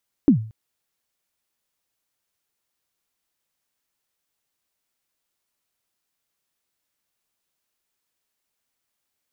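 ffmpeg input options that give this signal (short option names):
-f lavfi -i "aevalsrc='0.447*pow(10,-3*t/0.42)*sin(2*PI*(320*0.101/log(110/320)*(exp(log(110/320)*min(t,0.101)/0.101)-1)+110*max(t-0.101,0)))':d=0.23:s=44100"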